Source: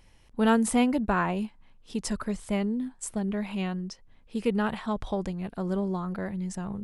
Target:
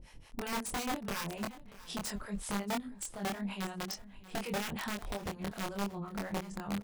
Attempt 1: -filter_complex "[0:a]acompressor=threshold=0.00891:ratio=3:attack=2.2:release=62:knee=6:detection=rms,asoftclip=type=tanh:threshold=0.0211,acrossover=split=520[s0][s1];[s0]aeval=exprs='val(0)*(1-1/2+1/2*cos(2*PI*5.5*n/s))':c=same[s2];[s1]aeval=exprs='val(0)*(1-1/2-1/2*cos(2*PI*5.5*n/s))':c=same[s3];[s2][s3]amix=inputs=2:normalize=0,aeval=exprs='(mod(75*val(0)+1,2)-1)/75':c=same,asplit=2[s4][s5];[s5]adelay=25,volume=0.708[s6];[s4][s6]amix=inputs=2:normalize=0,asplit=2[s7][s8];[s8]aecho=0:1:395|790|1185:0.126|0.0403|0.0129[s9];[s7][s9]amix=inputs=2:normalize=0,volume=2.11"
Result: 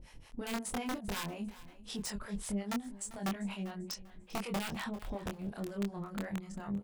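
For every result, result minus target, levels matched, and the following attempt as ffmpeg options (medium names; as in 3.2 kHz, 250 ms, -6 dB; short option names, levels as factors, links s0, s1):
saturation: distortion +16 dB; echo 239 ms early
-filter_complex "[0:a]acompressor=threshold=0.00891:ratio=3:attack=2.2:release=62:knee=6:detection=rms,asoftclip=type=tanh:threshold=0.0596,acrossover=split=520[s0][s1];[s0]aeval=exprs='val(0)*(1-1/2+1/2*cos(2*PI*5.5*n/s))':c=same[s2];[s1]aeval=exprs='val(0)*(1-1/2-1/2*cos(2*PI*5.5*n/s))':c=same[s3];[s2][s3]amix=inputs=2:normalize=0,aeval=exprs='(mod(75*val(0)+1,2)-1)/75':c=same,asplit=2[s4][s5];[s5]adelay=25,volume=0.708[s6];[s4][s6]amix=inputs=2:normalize=0,asplit=2[s7][s8];[s8]aecho=0:1:395|790|1185:0.126|0.0403|0.0129[s9];[s7][s9]amix=inputs=2:normalize=0,volume=2.11"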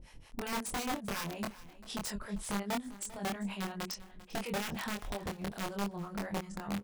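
echo 239 ms early
-filter_complex "[0:a]acompressor=threshold=0.00891:ratio=3:attack=2.2:release=62:knee=6:detection=rms,asoftclip=type=tanh:threshold=0.0596,acrossover=split=520[s0][s1];[s0]aeval=exprs='val(0)*(1-1/2+1/2*cos(2*PI*5.5*n/s))':c=same[s2];[s1]aeval=exprs='val(0)*(1-1/2-1/2*cos(2*PI*5.5*n/s))':c=same[s3];[s2][s3]amix=inputs=2:normalize=0,aeval=exprs='(mod(75*val(0)+1,2)-1)/75':c=same,asplit=2[s4][s5];[s5]adelay=25,volume=0.708[s6];[s4][s6]amix=inputs=2:normalize=0,asplit=2[s7][s8];[s8]aecho=0:1:634|1268|1902:0.126|0.0403|0.0129[s9];[s7][s9]amix=inputs=2:normalize=0,volume=2.11"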